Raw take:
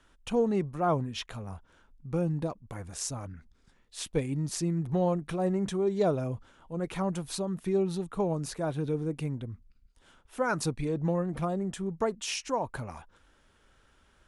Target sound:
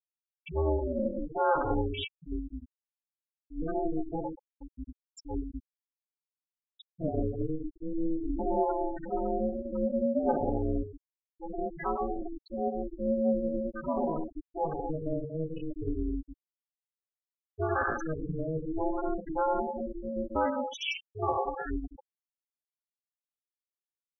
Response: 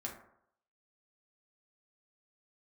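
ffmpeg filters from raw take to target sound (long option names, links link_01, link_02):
-filter_complex "[0:a]acrossover=split=180|1000[link_01][link_02][link_03];[link_01]acrusher=bits=3:mode=log:mix=0:aa=0.000001[link_04];[link_04][link_02][link_03]amix=inputs=3:normalize=0[link_05];[1:a]atrim=start_sample=2205,afade=type=out:start_time=0.24:duration=0.01,atrim=end_sample=11025[link_06];[link_05][link_06]afir=irnorm=-1:irlink=0,asplit=2[link_07][link_08];[link_08]alimiter=limit=-23dB:level=0:latency=1:release=39,volume=-2dB[link_09];[link_07][link_09]amix=inputs=2:normalize=0,equalizer=frequency=1600:width_type=o:width=1.3:gain=2.5,aecho=1:1:7.2:0.9,atempo=0.59,adynamicequalizer=threshold=0.00282:dfrequency=2800:dqfactor=2.2:tfrequency=2800:tqfactor=2.2:attack=5:release=100:ratio=0.375:range=3.5:mode=boostabove:tftype=bell,asplit=4[link_10][link_11][link_12][link_13];[link_11]adelay=200,afreqshift=-69,volume=-21.5dB[link_14];[link_12]adelay=400,afreqshift=-138,volume=-28.2dB[link_15];[link_13]adelay=600,afreqshift=-207,volume=-35dB[link_16];[link_10][link_14][link_15][link_16]amix=inputs=4:normalize=0,afftfilt=real='re*gte(hypot(re,im),0.178)':imag='im*gte(hypot(re,im),0.178)':win_size=1024:overlap=0.75,aeval=exprs='val(0)*sin(2*PI*160*n/s)':channel_layout=same,acompressor=threshold=-27dB:ratio=1.5,volume=-1.5dB"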